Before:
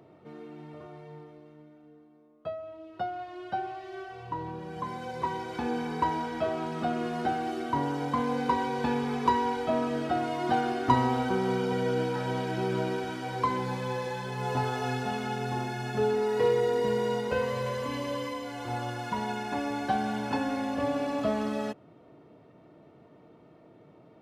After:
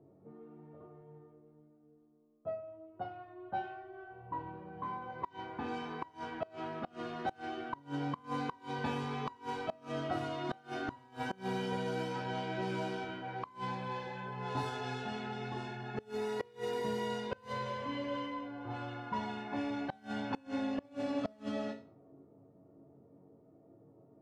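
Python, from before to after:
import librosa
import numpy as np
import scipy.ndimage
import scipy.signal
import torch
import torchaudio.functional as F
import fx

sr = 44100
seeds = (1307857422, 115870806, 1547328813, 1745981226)

y = fx.env_lowpass(x, sr, base_hz=550.0, full_db=-23.5)
y = fx.resonator_bank(y, sr, root=42, chord='minor', decay_s=0.35)
y = fx.gate_flip(y, sr, shuts_db=-33.0, range_db=-26)
y = F.gain(torch.from_numpy(y), 9.0).numpy()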